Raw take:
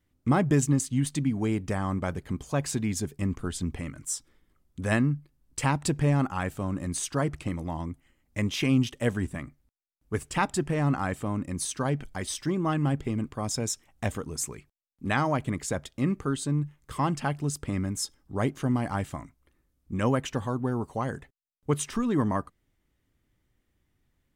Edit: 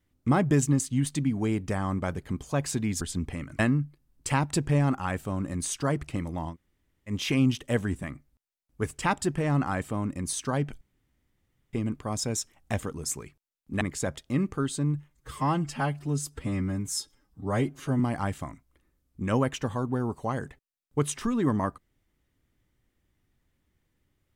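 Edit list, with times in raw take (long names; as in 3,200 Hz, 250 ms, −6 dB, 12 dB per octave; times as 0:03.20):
0:03.01–0:03.47: remove
0:04.05–0:04.91: remove
0:07.84–0:08.43: fill with room tone, crossfade 0.10 s
0:12.13–0:13.05: fill with room tone
0:15.13–0:15.49: remove
0:16.78–0:18.71: time-stretch 1.5×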